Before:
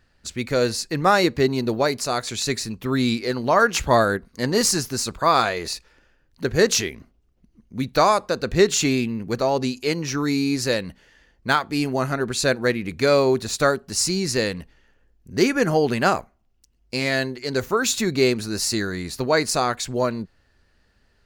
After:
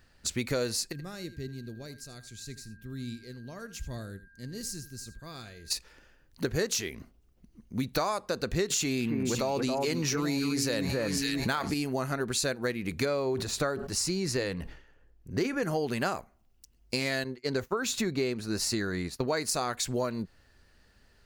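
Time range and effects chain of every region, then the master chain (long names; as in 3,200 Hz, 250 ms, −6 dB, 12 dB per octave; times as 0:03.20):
0:00.91–0:05.70: guitar amp tone stack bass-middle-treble 10-0-1 + steady tone 1,600 Hz −56 dBFS + single-tap delay 81 ms −15.5 dB
0:08.70–0:11.74: delay that swaps between a low-pass and a high-pass 275 ms, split 1,800 Hz, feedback 51%, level −6.5 dB + envelope flattener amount 70%
0:13.05–0:15.63: high-shelf EQ 4,000 Hz −10 dB + notch filter 220 Hz, Q 5.8 + level that may fall only so fast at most 98 dB per second
0:17.24–0:19.28: downward expander −28 dBFS + high-shelf EQ 5,100 Hz −10.5 dB
whole clip: high-shelf EQ 7,500 Hz +7.5 dB; downward compressor 6 to 1, threshold −27 dBFS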